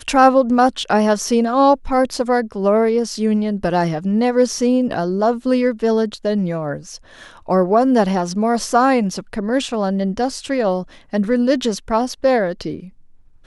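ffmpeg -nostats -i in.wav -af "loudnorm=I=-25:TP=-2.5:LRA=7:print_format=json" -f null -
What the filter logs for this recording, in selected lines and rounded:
"input_i" : "-17.9",
"input_tp" : "-1.3",
"input_lra" : "3.3",
"input_thresh" : "-28.4",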